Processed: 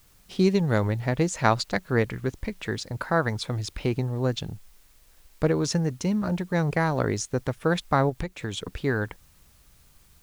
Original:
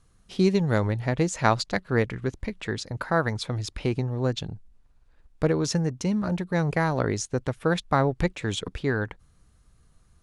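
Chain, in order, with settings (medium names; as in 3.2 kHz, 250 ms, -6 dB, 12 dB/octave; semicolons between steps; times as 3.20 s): in parallel at -11 dB: word length cut 8-bit, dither triangular; 8.09–8.80 s: on the sum: compression 12:1, threshold -25 dBFS, peak gain reduction 10.5 dB; trim -2 dB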